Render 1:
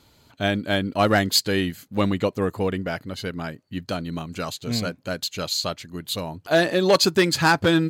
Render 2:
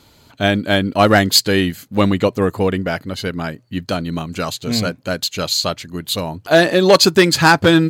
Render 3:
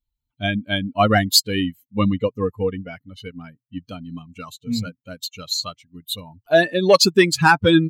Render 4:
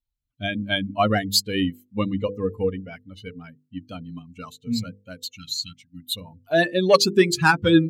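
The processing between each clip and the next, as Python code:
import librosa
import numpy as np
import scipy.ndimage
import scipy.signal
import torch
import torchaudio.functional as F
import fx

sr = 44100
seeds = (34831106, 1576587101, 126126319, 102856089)

y1 = fx.hum_notches(x, sr, base_hz=60, count=2)
y1 = F.gain(torch.from_numpy(y1), 7.0).numpy()
y2 = fx.bin_expand(y1, sr, power=2.0)
y3 = fx.spec_repair(y2, sr, seeds[0], start_s=5.37, length_s=0.77, low_hz=340.0, high_hz=1300.0, source='before')
y3 = fx.rotary_switch(y3, sr, hz=1.0, then_hz=6.0, switch_at_s=1.91)
y3 = fx.hum_notches(y3, sr, base_hz=50, count=10)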